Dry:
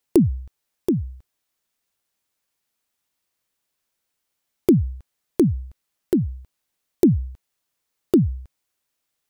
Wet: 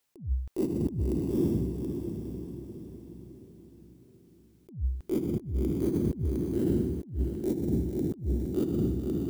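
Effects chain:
feedback delay with all-pass diffusion 553 ms, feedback 48%, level −5 dB
compressor whose output falls as the input rises −25 dBFS, ratio −0.5
level −3 dB

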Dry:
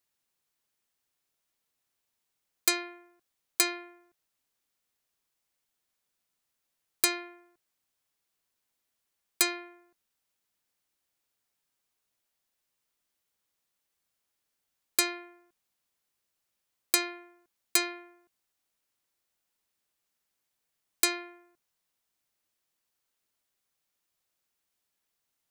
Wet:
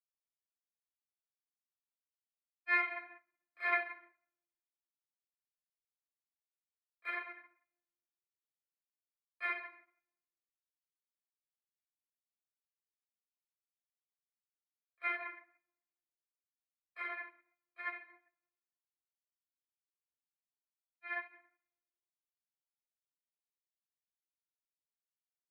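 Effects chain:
elliptic band-pass filter 410–2,100 Hz, stop band 50 dB
spectral tilt +4 dB per octave
comb filter 5.7 ms, depth 70%
brickwall limiter −22.5 dBFS, peak gain reduction 9 dB
sample-and-hold tremolo 2 Hz
pitch vibrato 4.5 Hz 13 cents
granular cloud, spray 33 ms, pitch spread up and down by 0 semitones
echo with shifted repeats 126 ms, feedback 34%, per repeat −38 Hz, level −20 dB
rectangular room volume 1,000 cubic metres, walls mixed, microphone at 6.1 metres
expander for the loud parts 2.5 to 1, over −50 dBFS
level −4 dB

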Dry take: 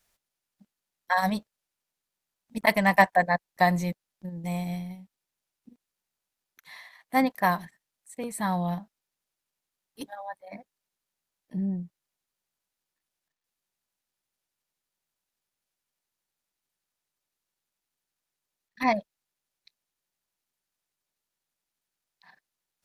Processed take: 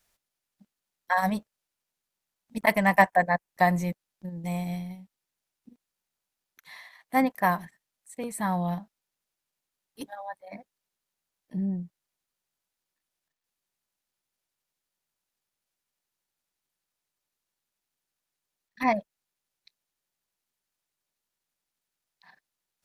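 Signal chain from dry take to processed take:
dynamic equaliser 4,100 Hz, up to −7 dB, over −50 dBFS, Q 1.9

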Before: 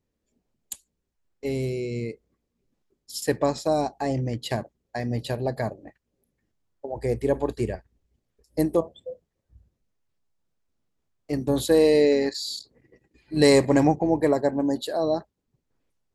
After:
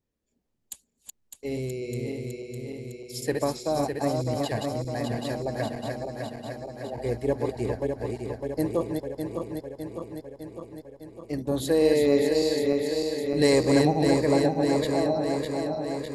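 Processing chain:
feedback delay that plays each chunk backwards 303 ms, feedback 80%, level −4 dB
level −4 dB

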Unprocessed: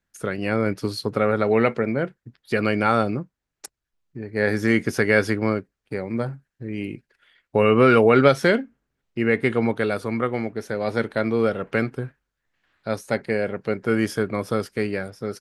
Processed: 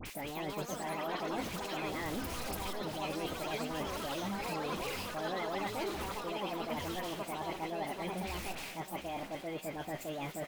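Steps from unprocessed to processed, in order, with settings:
converter with a step at zero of −27.5 dBFS
dynamic equaliser 4,400 Hz, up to −4 dB, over −38 dBFS, Q 0.84
reversed playback
downward compressor, threshold −30 dBFS, peak gain reduction 18.5 dB
reversed playback
all-pass dispersion highs, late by 84 ms, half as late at 1,300 Hz
change of speed 1.47×
on a send: repeating echo 740 ms, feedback 59%, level −13.5 dB
on the sum: delay with pitch and tempo change per echo 233 ms, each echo +4 semitones, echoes 3
level −7.5 dB

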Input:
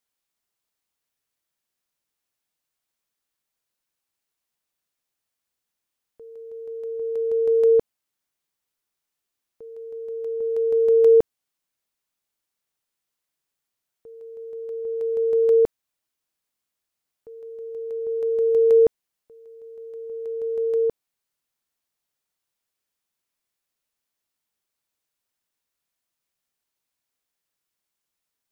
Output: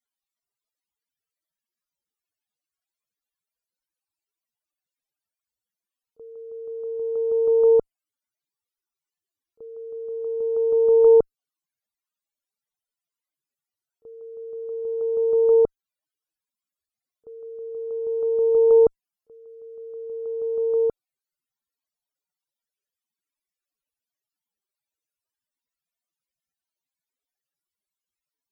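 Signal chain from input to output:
spectral peaks only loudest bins 64
echo ahead of the sound 31 ms −22 dB
harmonic generator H 2 −24 dB, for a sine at −8.5 dBFS

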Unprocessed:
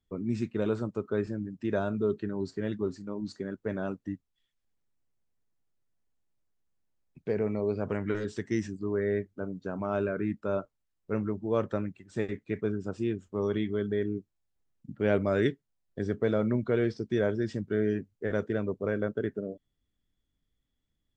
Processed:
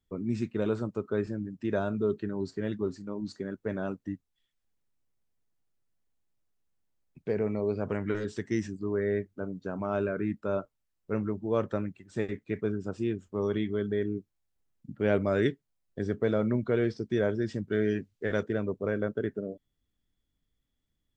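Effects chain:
0:17.72–0:18.43: parametric band 4,000 Hz +7.5 dB 2.2 octaves

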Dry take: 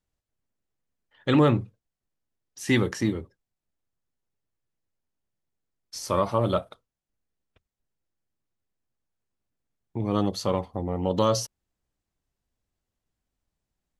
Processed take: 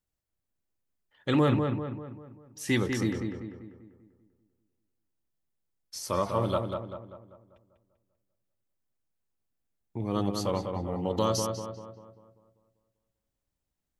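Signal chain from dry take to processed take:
high-shelf EQ 9,300 Hz +8 dB
on a send: feedback echo with a low-pass in the loop 196 ms, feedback 48%, low-pass 2,500 Hz, level −5 dB
on the sum: level −4.5 dB

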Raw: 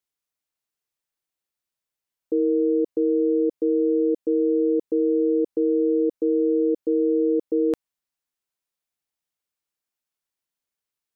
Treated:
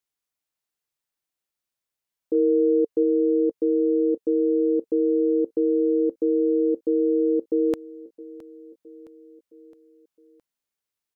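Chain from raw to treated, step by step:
0:02.34–0:03.03: dynamic equaliser 450 Hz, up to +3 dB, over −33 dBFS, Q 6.9
repeating echo 665 ms, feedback 54%, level −19 dB

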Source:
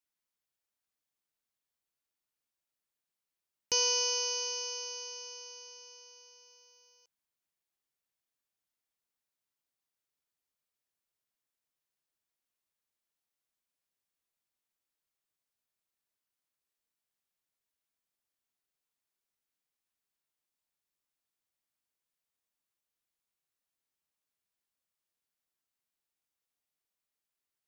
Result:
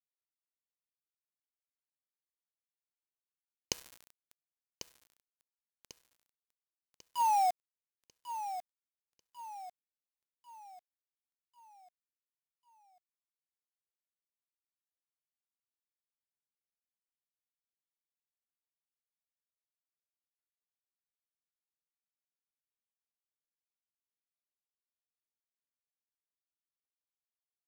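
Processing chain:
sound drawn into the spectrogram fall, 0:05.87–0:07.51, 710–3,300 Hz −44 dBFS
downward compressor 2 to 1, threshold −45 dBFS, peak gain reduction 11 dB
gate with flip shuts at −42 dBFS, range −24 dB
leveller curve on the samples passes 3
bit-depth reduction 8 bits, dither none
repeating echo 1,095 ms, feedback 44%, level −11 dB
level +7 dB

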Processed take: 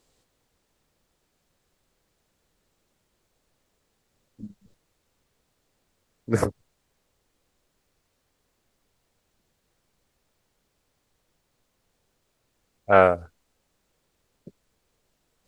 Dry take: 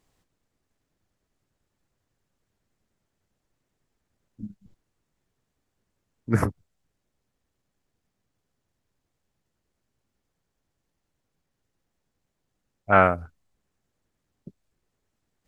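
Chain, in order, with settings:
graphic EQ with 10 bands 500 Hz +11 dB, 4,000 Hz +9 dB, 8,000 Hz +9 dB
background noise pink −70 dBFS
level −4 dB

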